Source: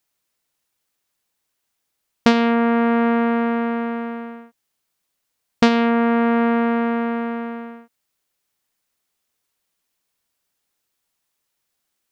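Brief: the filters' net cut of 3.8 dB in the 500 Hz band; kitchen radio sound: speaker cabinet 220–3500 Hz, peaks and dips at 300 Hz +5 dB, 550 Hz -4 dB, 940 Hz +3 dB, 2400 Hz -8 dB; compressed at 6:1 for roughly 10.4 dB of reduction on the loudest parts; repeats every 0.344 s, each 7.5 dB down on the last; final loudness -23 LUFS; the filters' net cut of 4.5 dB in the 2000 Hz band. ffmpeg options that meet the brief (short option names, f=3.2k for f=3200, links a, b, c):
-af "equalizer=f=500:t=o:g=-3,equalizer=f=2k:t=o:g=-3.5,acompressor=threshold=-22dB:ratio=6,highpass=220,equalizer=f=300:t=q:w=4:g=5,equalizer=f=550:t=q:w=4:g=-4,equalizer=f=940:t=q:w=4:g=3,equalizer=f=2.4k:t=q:w=4:g=-8,lowpass=f=3.5k:w=0.5412,lowpass=f=3.5k:w=1.3066,aecho=1:1:344|688|1032|1376|1720:0.422|0.177|0.0744|0.0312|0.0131,volume=3.5dB"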